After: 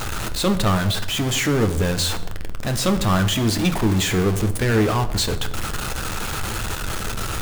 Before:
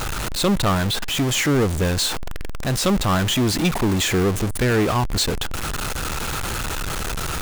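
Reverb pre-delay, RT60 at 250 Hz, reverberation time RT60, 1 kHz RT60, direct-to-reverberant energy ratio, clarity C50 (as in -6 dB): 9 ms, 1.1 s, 0.95 s, 0.80 s, 7.5 dB, 13.0 dB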